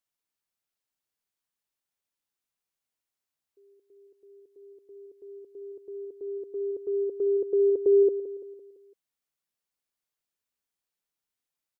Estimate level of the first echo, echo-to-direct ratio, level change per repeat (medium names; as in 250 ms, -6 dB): -13.0 dB, -12.0 dB, -6.0 dB